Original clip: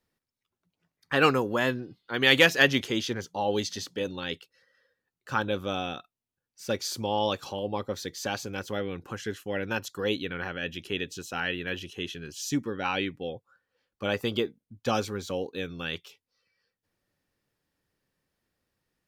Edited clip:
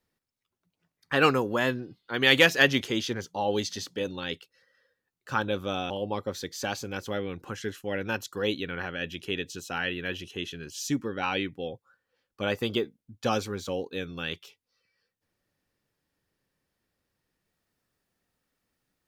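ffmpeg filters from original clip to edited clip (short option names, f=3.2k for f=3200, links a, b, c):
-filter_complex "[0:a]asplit=2[a][b];[a]atrim=end=5.902[c];[b]atrim=start=7.518[d];[c][d]acrossfade=d=0.004:c1=hsin:c2=hsin"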